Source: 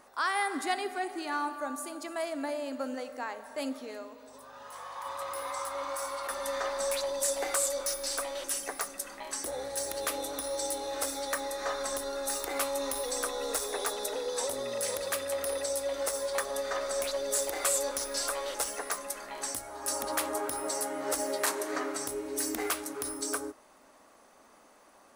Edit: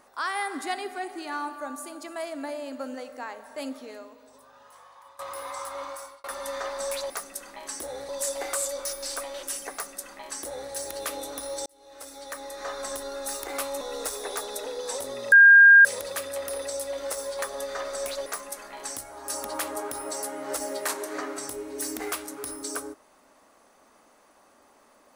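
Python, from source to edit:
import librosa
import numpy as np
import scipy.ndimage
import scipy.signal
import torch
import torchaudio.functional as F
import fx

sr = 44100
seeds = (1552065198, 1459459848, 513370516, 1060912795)

y = fx.edit(x, sr, fx.fade_out_to(start_s=3.87, length_s=1.32, floor_db=-17.0),
    fx.fade_out_span(start_s=5.83, length_s=0.41),
    fx.duplicate(start_s=8.74, length_s=0.99, to_s=7.1),
    fx.fade_in_span(start_s=10.67, length_s=1.21),
    fx.cut(start_s=12.82, length_s=0.48),
    fx.insert_tone(at_s=14.81, length_s=0.53, hz=1610.0, db=-9.0),
    fx.cut(start_s=17.22, length_s=1.62), tone=tone)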